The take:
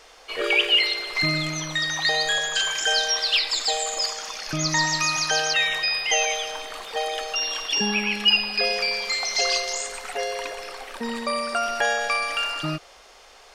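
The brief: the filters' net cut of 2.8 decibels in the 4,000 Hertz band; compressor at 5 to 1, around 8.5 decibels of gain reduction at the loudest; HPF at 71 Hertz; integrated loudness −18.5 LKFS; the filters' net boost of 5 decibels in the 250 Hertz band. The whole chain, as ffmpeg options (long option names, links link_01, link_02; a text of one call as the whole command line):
ffmpeg -i in.wav -af "highpass=71,equalizer=frequency=250:width_type=o:gain=7,equalizer=frequency=4000:width_type=o:gain=-4,acompressor=threshold=-26dB:ratio=5,volume=10dB" out.wav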